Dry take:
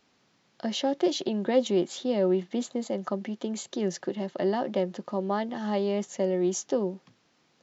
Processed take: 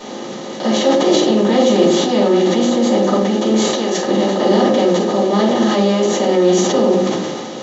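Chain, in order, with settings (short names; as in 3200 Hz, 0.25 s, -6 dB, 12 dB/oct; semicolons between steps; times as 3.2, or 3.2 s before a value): per-bin compression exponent 0.4; 3.57–4.03 HPF 440 Hz 6 dB/oct; shoebox room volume 420 m³, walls furnished, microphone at 8.6 m; sustainer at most 29 dB/s; gain -5 dB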